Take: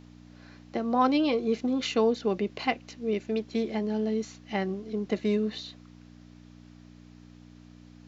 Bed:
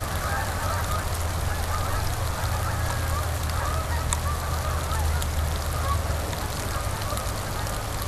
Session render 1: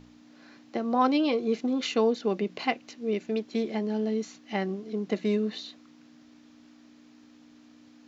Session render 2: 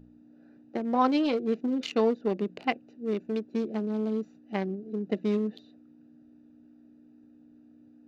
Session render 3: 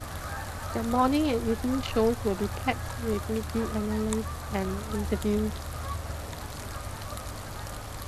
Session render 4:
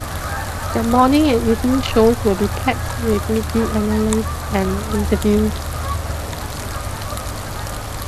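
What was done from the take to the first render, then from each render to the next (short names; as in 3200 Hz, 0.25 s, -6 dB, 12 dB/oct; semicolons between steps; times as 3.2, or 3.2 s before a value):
de-hum 60 Hz, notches 3
Wiener smoothing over 41 samples
add bed -9 dB
gain +11.5 dB; limiter -1 dBFS, peak gain reduction 3 dB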